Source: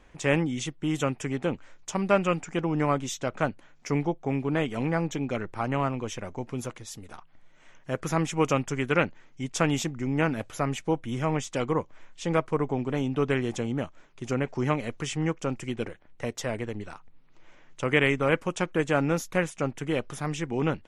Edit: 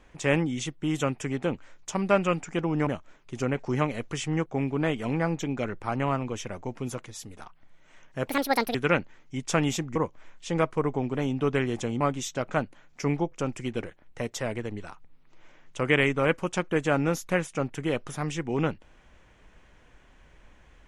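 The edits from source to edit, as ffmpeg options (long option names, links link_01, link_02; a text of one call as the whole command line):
ffmpeg -i in.wav -filter_complex "[0:a]asplit=8[link_01][link_02][link_03][link_04][link_05][link_06][link_07][link_08];[link_01]atrim=end=2.872[link_09];[link_02]atrim=start=13.758:end=15.352[link_10];[link_03]atrim=start=4.178:end=7.994[link_11];[link_04]atrim=start=7.99:end=8.81,asetpts=PTS-STARTPTS,asetrate=75852,aresample=44100,atrim=end_sample=21024,asetpts=PTS-STARTPTS[link_12];[link_05]atrim=start=8.806:end=10.022[link_13];[link_06]atrim=start=11.708:end=13.762[link_14];[link_07]atrim=start=2.868:end=4.182[link_15];[link_08]atrim=start=15.348[link_16];[link_09][link_10]acrossfade=duration=0.004:curve1=hsin:curve2=hsin[link_17];[link_17][link_11]acrossfade=duration=0.004:curve1=hsin:curve2=hsin[link_18];[link_18][link_12]acrossfade=duration=0.004:curve1=hsin:curve2=hsin[link_19];[link_19][link_13]acrossfade=duration=0.004:curve1=hsin:curve2=hsin[link_20];[link_20][link_14]acrossfade=duration=0.004:curve1=hsin:curve2=hsin[link_21];[link_21][link_15]acrossfade=duration=0.004:curve1=hsin:curve2=hsin[link_22];[link_22][link_16]acrossfade=duration=0.004:curve1=hsin:curve2=hsin" out.wav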